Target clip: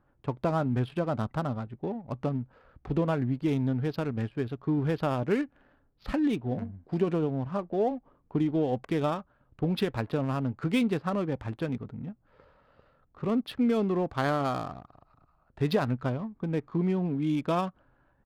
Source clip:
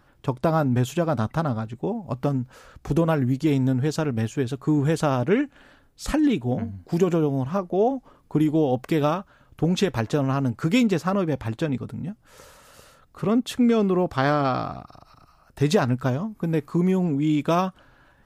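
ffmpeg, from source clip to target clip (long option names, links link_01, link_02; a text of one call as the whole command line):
ffmpeg -i in.wav -filter_complex "[0:a]asplit=2[link_01][link_02];[link_02]aeval=exprs='sgn(val(0))*max(abs(val(0))-0.01,0)':channel_layout=same,volume=-9.5dB[link_03];[link_01][link_03]amix=inputs=2:normalize=0,aresample=11025,aresample=44100,adynamicsmooth=sensitivity=6.5:basefreq=1500,volume=-8.5dB" out.wav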